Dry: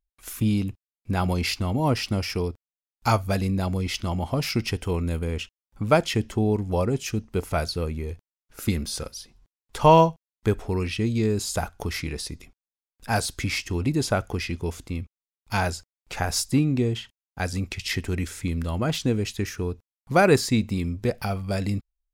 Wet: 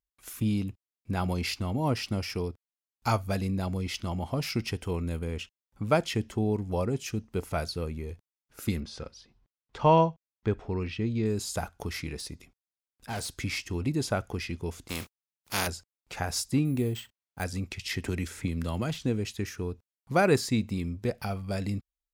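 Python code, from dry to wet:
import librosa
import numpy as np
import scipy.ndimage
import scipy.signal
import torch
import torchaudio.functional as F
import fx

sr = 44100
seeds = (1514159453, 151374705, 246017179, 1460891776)

y = fx.air_absorb(x, sr, metres=140.0, at=(8.8, 11.26))
y = fx.overload_stage(y, sr, gain_db=26.0, at=(12.17, 13.38))
y = fx.spec_flatten(y, sr, power=0.41, at=(14.88, 15.66), fade=0.02)
y = fx.resample_bad(y, sr, factor=4, down='none', up='hold', at=(16.65, 17.44))
y = fx.band_squash(y, sr, depth_pct=100, at=(18.04, 19.02))
y = fx.highpass(y, sr, hz=99.0, slope=6)
y = fx.low_shelf(y, sr, hz=180.0, db=4.0)
y = y * librosa.db_to_amplitude(-5.5)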